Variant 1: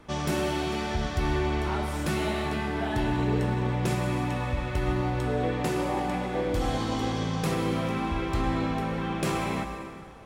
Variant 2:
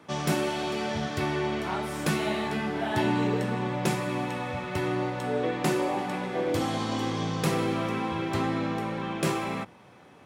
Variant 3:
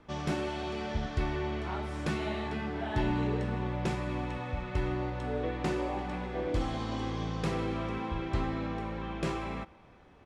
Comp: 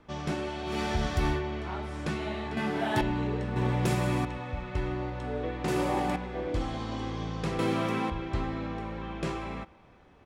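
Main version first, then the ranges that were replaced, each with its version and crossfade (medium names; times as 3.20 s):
3
0.72–1.35 s: from 1, crossfade 0.16 s
2.57–3.01 s: from 2
3.56–4.25 s: from 1
5.68–6.16 s: from 1
7.59–8.10 s: from 2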